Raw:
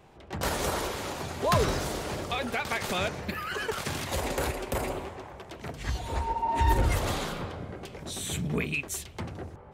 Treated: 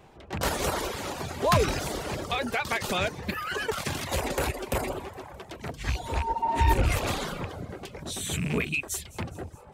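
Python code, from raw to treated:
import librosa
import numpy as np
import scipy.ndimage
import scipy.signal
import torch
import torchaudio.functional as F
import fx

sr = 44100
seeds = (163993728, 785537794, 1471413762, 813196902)

y = fx.rattle_buzz(x, sr, strikes_db=-30.0, level_db=-25.0)
y = fx.dereverb_blind(y, sr, rt60_s=0.55)
y = fx.echo_wet_highpass(y, sr, ms=208, feedback_pct=60, hz=4300.0, wet_db=-19.5)
y = F.gain(torch.from_numpy(y), 2.5).numpy()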